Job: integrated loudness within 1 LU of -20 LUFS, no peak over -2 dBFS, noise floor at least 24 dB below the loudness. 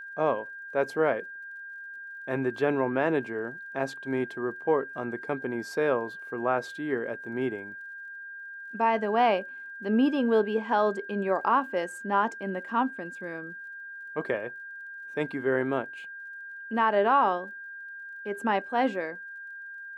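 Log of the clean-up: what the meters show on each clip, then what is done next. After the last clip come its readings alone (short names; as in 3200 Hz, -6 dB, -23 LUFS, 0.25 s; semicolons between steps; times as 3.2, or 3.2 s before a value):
ticks 37/s; steady tone 1600 Hz; tone level -39 dBFS; loudness -28.5 LUFS; peak -12.0 dBFS; loudness target -20.0 LUFS
-> de-click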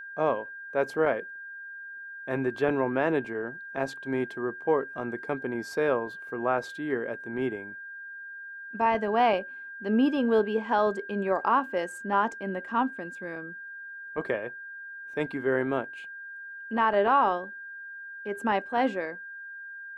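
ticks 0/s; steady tone 1600 Hz; tone level -39 dBFS
-> notch 1600 Hz, Q 30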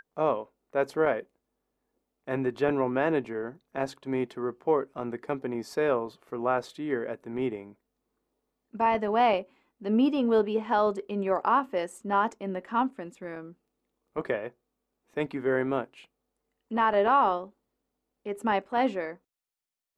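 steady tone none; loudness -28.5 LUFS; peak -12.5 dBFS; loudness target -20.0 LUFS
-> gain +8.5 dB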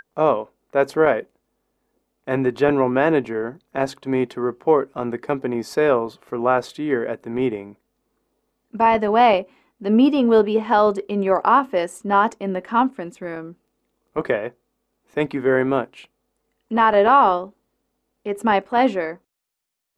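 loudness -20.0 LUFS; peak -4.0 dBFS; noise floor -74 dBFS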